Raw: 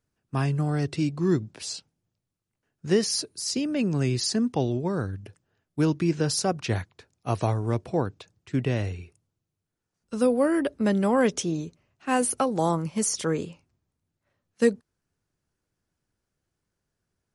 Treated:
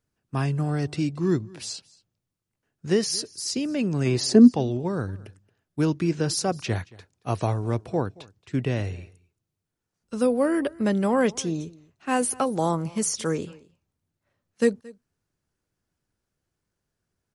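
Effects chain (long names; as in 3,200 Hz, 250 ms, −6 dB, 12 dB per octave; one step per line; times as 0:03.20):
0:04.05–0:04.49: parametric band 1,100 Hz → 250 Hz +15 dB 1.9 octaves
single-tap delay 225 ms −23 dB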